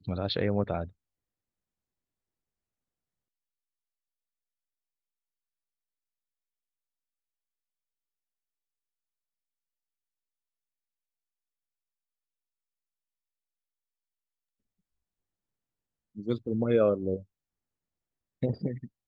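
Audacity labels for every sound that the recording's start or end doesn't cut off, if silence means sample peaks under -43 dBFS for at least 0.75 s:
16.170000	17.220000	sound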